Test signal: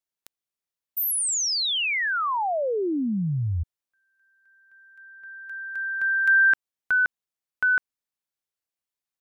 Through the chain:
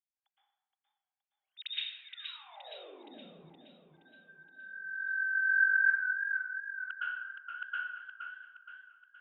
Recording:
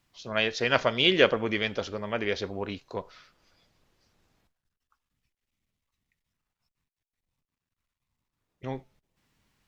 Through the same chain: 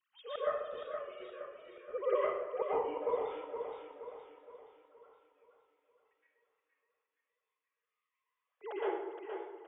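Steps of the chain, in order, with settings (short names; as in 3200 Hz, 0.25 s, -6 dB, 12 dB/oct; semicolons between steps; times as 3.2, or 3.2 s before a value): sine-wave speech; flipped gate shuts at -25 dBFS, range -39 dB; plate-style reverb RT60 0.97 s, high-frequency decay 0.65×, pre-delay 0.105 s, DRR -10 dB; warbling echo 0.47 s, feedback 47%, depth 57 cents, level -7 dB; gain -2.5 dB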